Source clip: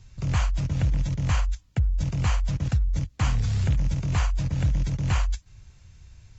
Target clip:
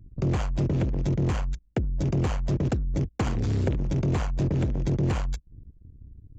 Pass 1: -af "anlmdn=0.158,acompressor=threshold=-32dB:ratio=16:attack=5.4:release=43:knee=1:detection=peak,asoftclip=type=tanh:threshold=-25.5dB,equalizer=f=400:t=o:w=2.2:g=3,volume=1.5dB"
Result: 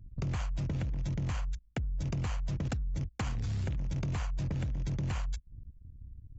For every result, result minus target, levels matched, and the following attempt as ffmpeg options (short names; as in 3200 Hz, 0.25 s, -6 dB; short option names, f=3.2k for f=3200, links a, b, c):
compressor: peak gain reduction +7.5 dB; 500 Hz band -6.5 dB
-af "anlmdn=0.158,acompressor=threshold=-24dB:ratio=16:attack=5.4:release=43:knee=1:detection=peak,asoftclip=type=tanh:threshold=-25.5dB,equalizer=f=400:t=o:w=2.2:g=3,volume=1.5dB"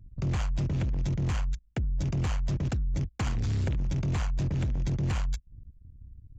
500 Hz band -6.5 dB
-af "anlmdn=0.158,acompressor=threshold=-24dB:ratio=16:attack=5.4:release=43:knee=1:detection=peak,asoftclip=type=tanh:threshold=-25.5dB,equalizer=f=400:t=o:w=2.2:g=14,volume=1.5dB"